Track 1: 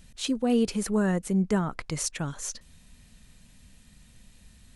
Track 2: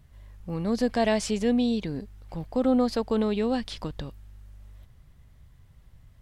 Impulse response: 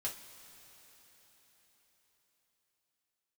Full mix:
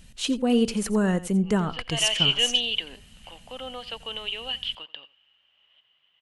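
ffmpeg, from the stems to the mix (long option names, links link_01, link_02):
-filter_complex "[0:a]volume=2dB,asplit=2[link_01][link_02];[link_02]volume=-16dB[link_03];[1:a]highpass=690,dynaudnorm=framelen=120:gausssize=11:maxgain=5.5dB,lowpass=frequency=3000:width_type=q:width=12,adelay=950,volume=-5.5dB,afade=type=in:start_time=1.99:duration=0.29:silence=0.334965,afade=type=out:start_time=3.19:duration=0.34:silence=0.446684,asplit=2[link_04][link_05];[link_05]volume=-20dB[link_06];[link_03][link_06]amix=inputs=2:normalize=0,aecho=0:1:87:1[link_07];[link_01][link_04][link_07]amix=inputs=3:normalize=0,equalizer=frequency=2900:width_type=o:width=0.21:gain=7"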